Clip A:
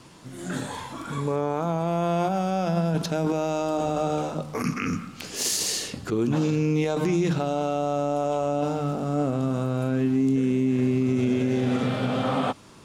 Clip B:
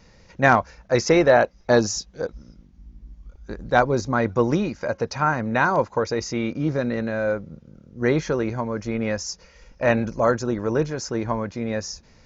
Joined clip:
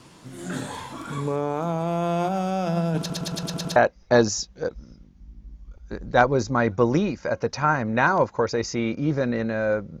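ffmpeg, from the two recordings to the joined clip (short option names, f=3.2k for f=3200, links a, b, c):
-filter_complex "[0:a]apad=whole_dur=10,atrim=end=10,asplit=7[a][b][c][d][e][f][g];[a]atrim=end=3.102[h];[b]atrim=start=2.988:end=3.102[i];[c]atrim=start=2.988:end=3.102[j];[d]atrim=start=2.988:end=3.102[k];[e]atrim=start=2.988:end=3.102[l];[f]atrim=start=2.988:end=3.102[m];[g]atrim=start=2.988:end=3.102[n];[1:a]atrim=start=1.338:end=7.58[o];[h][i]acrossfade=d=0.004:c1=hsin:c2=hsin[p];[p][j]acrossfade=d=0.004:c1=hsin:c2=hsin[q];[q][k]acrossfade=d=0.004:c1=hsin:c2=hsin[r];[r][l]acrossfade=d=0.004:c1=hsin:c2=hsin[s];[s][m]acrossfade=d=0.004:c1=hsin:c2=hsin[t];[t][n]acrossfade=d=0.004:c1=hsin:c2=hsin[u];[u][o]acrossfade=d=0.004:c1=hsin:c2=hsin"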